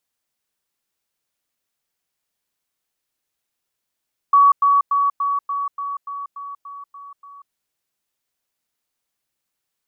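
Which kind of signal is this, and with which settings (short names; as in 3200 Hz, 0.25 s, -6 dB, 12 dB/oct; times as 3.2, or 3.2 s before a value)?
level ladder 1130 Hz -8.5 dBFS, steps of -3 dB, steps 11, 0.19 s 0.10 s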